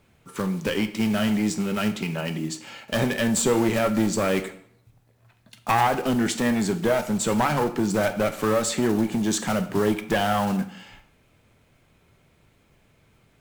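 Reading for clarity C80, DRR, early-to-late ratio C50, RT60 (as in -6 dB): 16.0 dB, 8.0 dB, 13.0 dB, 0.60 s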